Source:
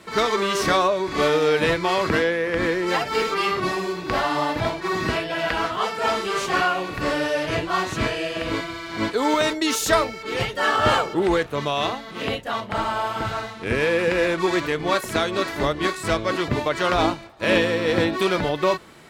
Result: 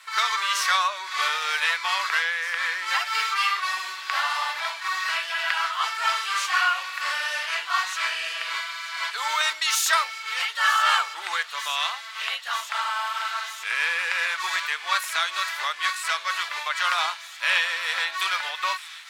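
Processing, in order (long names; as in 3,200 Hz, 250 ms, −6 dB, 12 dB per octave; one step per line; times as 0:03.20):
high-pass filter 1,100 Hz 24 dB per octave
on a send: delay with a high-pass on its return 935 ms, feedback 84%, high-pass 2,800 Hz, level −14.5 dB
on the sum: level +2 dB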